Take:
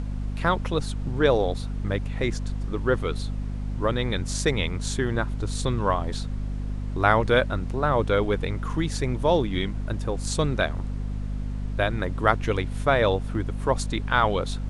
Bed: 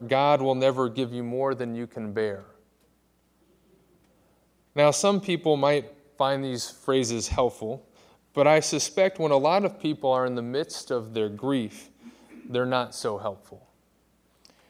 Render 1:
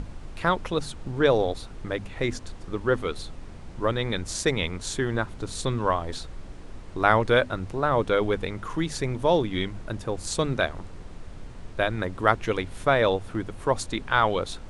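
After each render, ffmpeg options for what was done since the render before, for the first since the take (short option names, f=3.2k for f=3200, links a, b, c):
-af "bandreject=f=50:t=h:w=6,bandreject=f=100:t=h:w=6,bandreject=f=150:t=h:w=6,bandreject=f=200:t=h:w=6,bandreject=f=250:t=h:w=6"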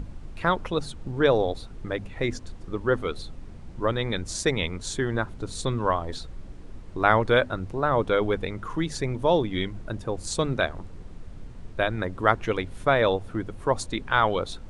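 -af "afftdn=nr=6:nf=-42"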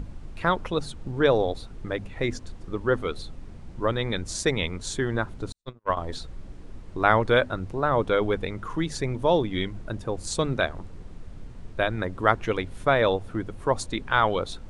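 -filter_complex "[0:a]asettb=1/sr,asplit=3[a][b][c];[a]atrim=end=5.524[d];[b]atrim=start=5.52:end=5.97,asetpts=PTS-STARTPTS,afade=t=in:d=0.004:c=qsin,afade=t=out:st=0.446:d=0.004:c=qsin,agate=range=-57dB:threshold=-23dB:ratio=16:release=100:detection=peak[e];[c]atrim=start=5.966[f];[d][e]acrossfade=d=0.004:c1=hsin:c2=qsin[g];[g][f]acrossfade=d=0.004:c1=qsin:c2=hsin"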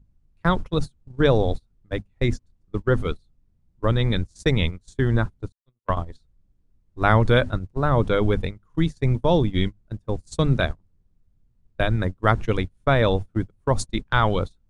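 -af "agate=range=-33dB:threshold=-28dB:ratio=16:detection=peak,bass=f=250:g=11,treble=f=4k:g=5"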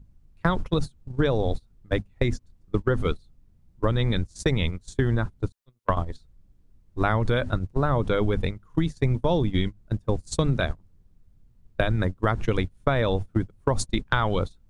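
-filter_complex "[0:a]asplit=2[a][b];[b]alimiter=limit=-13.5dB:level=0:latency=1:release=89,volume=0dB[c];[a][c]amix=inputs=2:normalize=0,acompressor=threshold=-19dB:ratio=6"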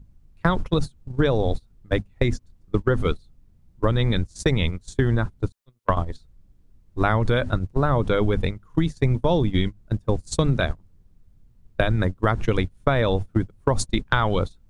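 -af "volume=2.5dB"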